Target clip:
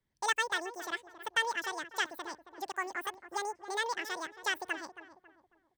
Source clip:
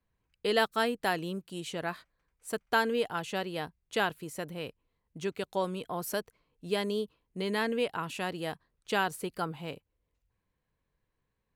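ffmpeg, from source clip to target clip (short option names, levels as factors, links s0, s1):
-filter_complex "[0:a]equalizer=f=860:t=o:w=0.22:g=11,asplit=2[s0][s1];[s1]adelay=547,lowpass=f=850:p=1,volume=0.266,asplit=2[s2][s3];[s3]adelay=547,lowpass=f=850:p=1,volume=0.4,asplit=2[s4][s5];[s5]adelay=547,lowpass=f=850:p=1,volume=0.4,asplit=2[s6][s7];[s7]adelay=547,lowpass=f=850:p=1,volume=0.4[s8];[s2][s4][s6][s8]amix=inputs=4:normalize=0[s9];[s0][s9]amix=inputs=2:normalize=0,asetrate=88200,aresample=44100,volume=0.562"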